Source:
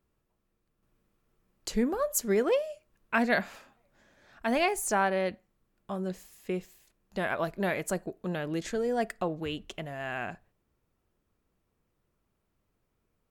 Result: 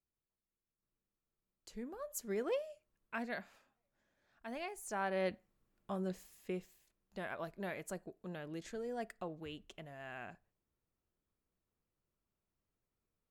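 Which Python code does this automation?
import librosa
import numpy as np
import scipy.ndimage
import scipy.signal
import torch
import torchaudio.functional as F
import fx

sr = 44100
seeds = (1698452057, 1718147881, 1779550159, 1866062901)

y = fx.gain(x, sr, db=fx.line((1.71, -19.5), (2.55, -10.0), (3.5, -17.0), (4.8, -17.0), (5.26, -5.0), (6.02, -5.0), (7.28, -12.5)))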